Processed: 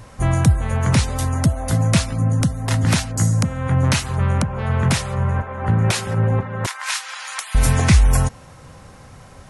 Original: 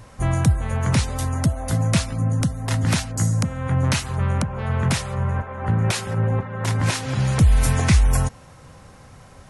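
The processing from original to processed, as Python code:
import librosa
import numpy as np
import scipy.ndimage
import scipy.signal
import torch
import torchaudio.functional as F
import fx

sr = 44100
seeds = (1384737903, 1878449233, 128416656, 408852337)

y = fx.highpass(x, sr, hz=1000.0, slope=24, at=(6.66, 7.55))
y = y * librosa.db_to_amplitude(3.0)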